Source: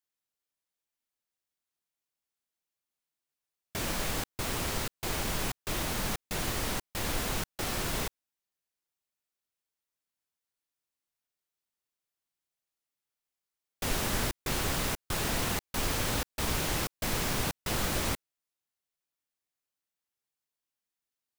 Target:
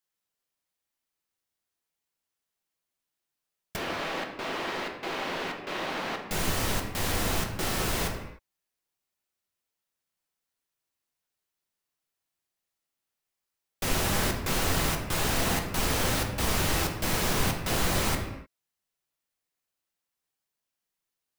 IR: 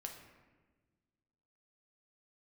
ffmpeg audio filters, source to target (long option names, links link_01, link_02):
-filter_complex "[0:a]asettb=1/sr,asplit=3[link_01][link_02][link_03];[link_01]atrim=end=3.764[link_04];[link_02]atrim=start=3.76:end=6.21,asetpts=PTS-STARTPTS,afade=type=in:duration=0.004:curve=qsin,afade=type=out:start_time=2.446:duration=0.004:curve=qsin,acrossover=split=230 4200:gain=0.0631 1 0.0794[link_05][link_06][link_07];[link_05][link_06][link_07]amix=inputs=3:normalize=0[link_08];[link_03]atrim=start=6.206[link_09];[link_04][link_08]acrossfade=duration=0.004:curve1=hsin:curve2=qsin[link_10];[link_10][link_09]acrossfade=duration=0.004:curve1=qsin:curve2=hsin[link_11];[1:a]atrim=start_sample=2205,afade=type=out:start_time=0.36:duration=0.01,atrim=end_sample=16317[link_12];[link_11][link_12]afir=irnorm=-1:irlink=0,volume=7.5dB"